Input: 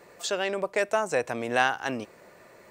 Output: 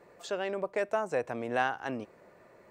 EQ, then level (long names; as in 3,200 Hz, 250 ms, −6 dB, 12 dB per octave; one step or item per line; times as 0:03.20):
high-shelf EQ 2,400 Hz −11.5 dB
−3.5 dB